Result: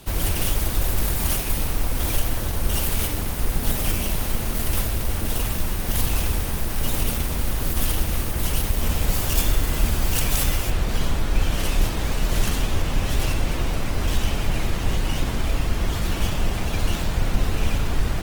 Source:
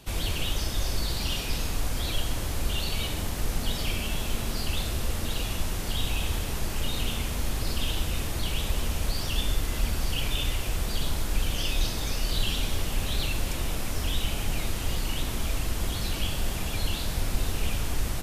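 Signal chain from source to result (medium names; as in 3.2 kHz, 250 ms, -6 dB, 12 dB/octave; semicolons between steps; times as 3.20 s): tracing distortion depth 0.5 ms; treble shelf 8.4 kHz +5 dB, from 10.70 s -9 dB; trim +6.5 dB; Opus 24 kbps 48 kHz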